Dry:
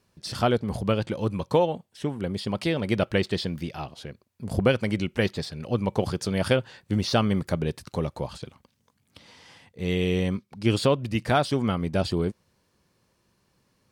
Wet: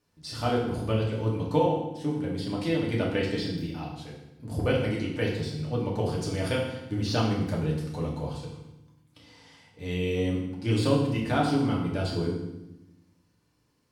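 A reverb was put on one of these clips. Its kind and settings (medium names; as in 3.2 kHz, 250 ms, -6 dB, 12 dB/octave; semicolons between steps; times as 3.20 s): FDN reverb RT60 0.92 s, low-frequency decay 1.55×, high-frequency decay 0.9×, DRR -4 dB; trim -9 dB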